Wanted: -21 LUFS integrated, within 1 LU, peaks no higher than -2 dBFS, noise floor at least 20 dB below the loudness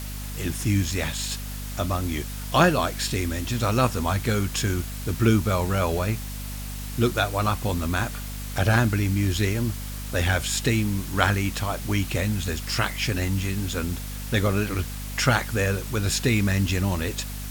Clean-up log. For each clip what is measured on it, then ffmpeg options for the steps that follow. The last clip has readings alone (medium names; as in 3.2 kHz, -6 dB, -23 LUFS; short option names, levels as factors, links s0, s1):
hum 50 Hz; highest harmonic 250 Hz; hum level -32 dBFS; noise floor -33 dBFS; noise floor target -45 dBFS; loudness -25.0 LUFS; peak level -2.0 dBFS; loudness target -21.0 LUFS
-> -af "bandreject=f=50:t=h:w=4,bandreject=f=100:t=h:w=4,bandreject=f=150:t=h:w=4,bandreject=f=200:t=h:w=4,bandreject=f=250:t=h:w=4"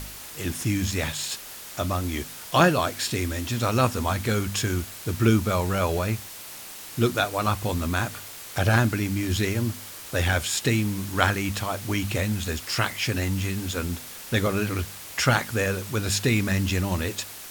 hum not found; noise floor -41 dBFS; noise floor target -46 dBFS
-> -af "afftdn=nr=6:nf=-41"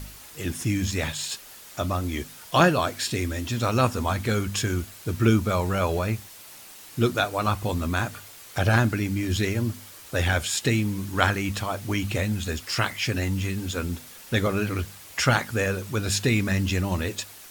noise floor -46 dBFS; loudness -26.0 LUFS; peak level -2.5 dBFS; loudness target -21.0 LUFS
-> -af "volume=1.78,alimiter=limit=0.794:level=0:latency=1"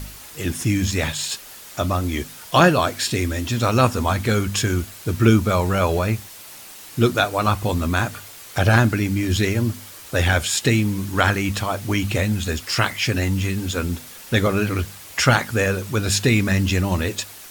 loudness -21.0 LUFS; peak level -2.0 dBFS; noise floor -41 dBFS